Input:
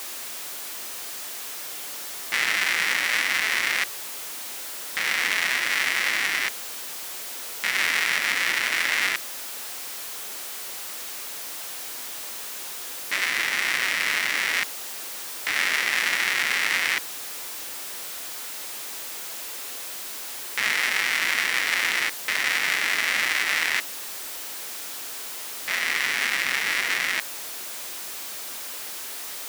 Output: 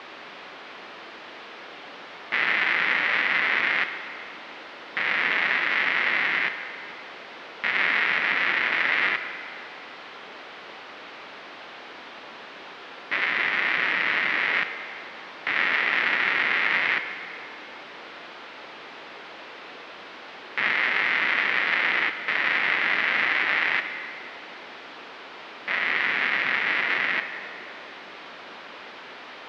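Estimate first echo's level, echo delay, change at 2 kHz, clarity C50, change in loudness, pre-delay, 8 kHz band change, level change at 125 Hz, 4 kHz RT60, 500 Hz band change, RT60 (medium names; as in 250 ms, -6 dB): no echo, no echo, +1.0 dB, 9.0 dB, +2.5 dB, 29 ms, under -25 dB, no reading, 2.4 s, +3.5 dB, 2.4 s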